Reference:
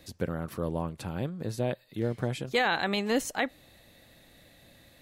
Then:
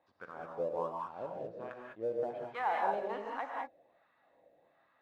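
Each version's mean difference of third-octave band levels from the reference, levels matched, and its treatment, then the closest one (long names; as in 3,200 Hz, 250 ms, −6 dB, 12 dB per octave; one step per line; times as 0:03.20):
11.0 dB: low-pass filter 3,200 Hz 12 dB per octave
LFO wah 1.3 Hz 510–1,300 Hz, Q 5.6
in parallel at −8.5 dB: dead-zone distortion −53 dBFS
on the sum: reverb whose tail is shaped and stops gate 230 ms rising, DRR −1 dB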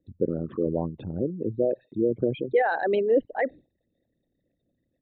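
14.5 dB: spectral envelope exaggerated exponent 3
noise gate with hold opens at −47 dBFS
parametric band 370 Hz +9.5 dB 2.5 octaves
downsampling to 8,000 Hz
level −2.5 dB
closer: first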